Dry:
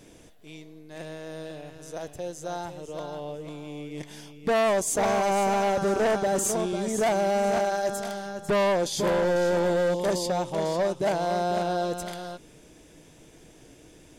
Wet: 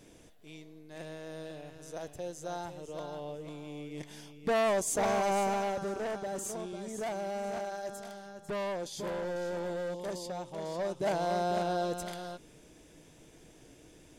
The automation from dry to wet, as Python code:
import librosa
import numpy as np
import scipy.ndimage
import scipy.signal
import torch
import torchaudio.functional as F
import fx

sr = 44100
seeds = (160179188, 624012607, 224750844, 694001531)

y = fx.gain(x, sr, db=fx.line((5.37, -5.0), (5.99, -12.0), (10.58, -12.0), (11.15, -4.5)))